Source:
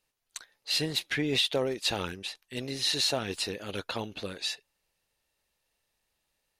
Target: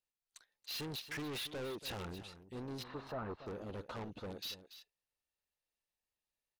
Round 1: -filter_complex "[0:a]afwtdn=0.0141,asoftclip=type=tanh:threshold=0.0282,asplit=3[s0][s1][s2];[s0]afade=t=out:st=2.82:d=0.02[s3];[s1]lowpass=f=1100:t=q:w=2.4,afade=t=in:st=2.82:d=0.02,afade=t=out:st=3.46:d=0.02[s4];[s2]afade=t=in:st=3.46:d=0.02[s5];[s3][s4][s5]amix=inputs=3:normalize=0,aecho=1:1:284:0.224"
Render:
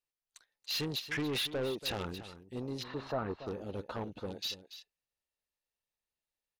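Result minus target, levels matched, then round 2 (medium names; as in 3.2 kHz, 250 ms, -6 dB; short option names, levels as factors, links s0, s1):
saturation: distortion -5 dB
-filter_complex "[0:a]afwtdn=0.0141,asoftclip=type=tanh:threshold=0.00944,asplit=3[s0][s1][s2];[s0]afade=t=out:st=2.82:d=0.02[s3];[s1]lowpass=f=1100:t=q:w=2.4,afade=t=in:st=2.82:d=0.02,afade=t=out:st=3.46:d=0.02[s4];[s2]afade=t=in:st=3.46:d=0.02[s5];[s3][s4][s5]amix=inputs=3:normalize=0,aecho=1:1:284:0.224"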